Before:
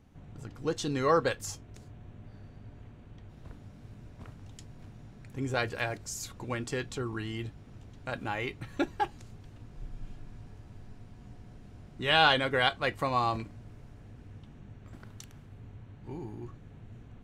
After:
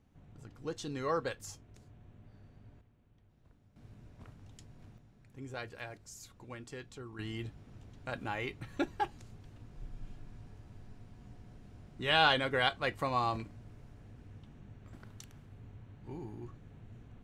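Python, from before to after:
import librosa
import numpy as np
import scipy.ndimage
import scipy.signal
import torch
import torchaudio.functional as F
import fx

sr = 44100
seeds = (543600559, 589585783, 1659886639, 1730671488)

y = fx.gain(x, sr, db=fx.steps((0.0, -8.0), (2.81, -17.0), (3.76, -6.0), (4.98, -12.0), (7.19, -3.5)))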